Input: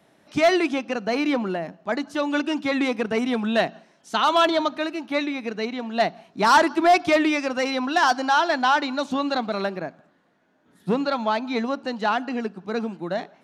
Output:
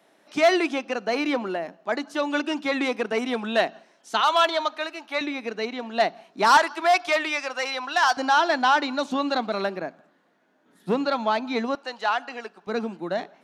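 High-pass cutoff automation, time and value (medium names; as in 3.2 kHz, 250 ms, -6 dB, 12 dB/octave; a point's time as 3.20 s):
300 Hz
from 4.21 s 630 Hz
from 5.21 s 280 Hz
from 6.57 s 710 Hz
from 8.17 s 210 Hz
from 11.75 s 660 Hz
from 12.67 s 200 Hz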